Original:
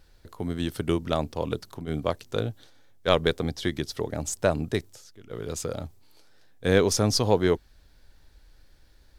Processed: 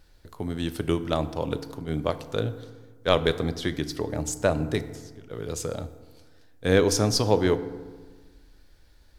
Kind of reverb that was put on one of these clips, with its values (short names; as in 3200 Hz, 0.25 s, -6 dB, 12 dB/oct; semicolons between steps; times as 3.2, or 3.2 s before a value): FDN reverb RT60 1.4 s, low-frequency decay 1.2×, high-frequency decay 0.5×, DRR 11 dB